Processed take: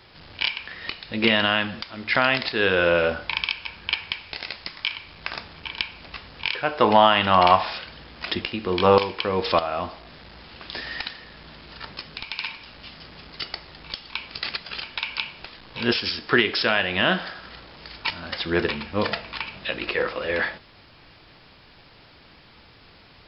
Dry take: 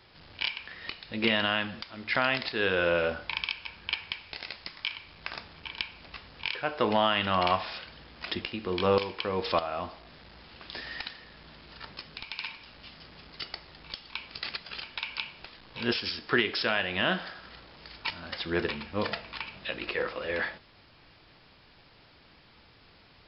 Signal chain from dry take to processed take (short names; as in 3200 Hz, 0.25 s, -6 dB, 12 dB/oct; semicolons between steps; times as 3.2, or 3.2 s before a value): 6.73–9.06 dynamic EQ 870 Hz, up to +6 dB, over -38 dBFS, Q 1.8; gain +6.5 dB